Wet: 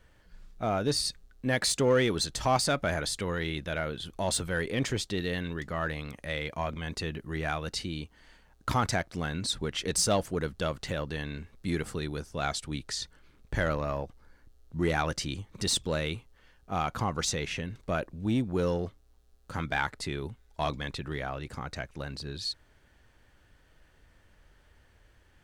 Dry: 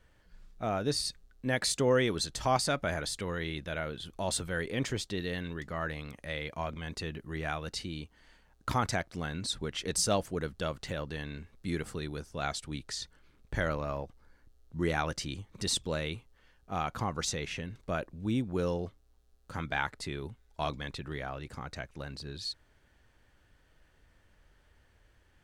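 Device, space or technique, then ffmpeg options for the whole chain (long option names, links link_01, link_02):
parallel distortion: -filter_complex "[0:a]asplit=2[link_01][link_02];[link_02]asoftclip=type=hard:threshold=-28dB,volume=-6dB[link_03];[link_01][link_03]amix=inputs=2:normalize=0"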